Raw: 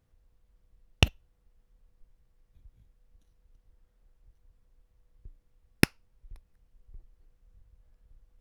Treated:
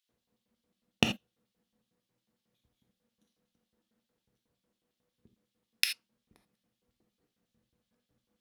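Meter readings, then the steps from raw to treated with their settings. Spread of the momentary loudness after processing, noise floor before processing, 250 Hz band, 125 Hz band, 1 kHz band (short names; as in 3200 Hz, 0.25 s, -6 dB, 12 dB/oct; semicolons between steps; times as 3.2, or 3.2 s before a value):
12 LU, -70 dBFS, -4.5 dB, -11.0 dB, -4.0 dB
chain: LFO high-pass square 5.5 Hz 220–3400 Hz; non-linear reverb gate 0.1 s flat, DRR 4.5 dB; gain -3 dB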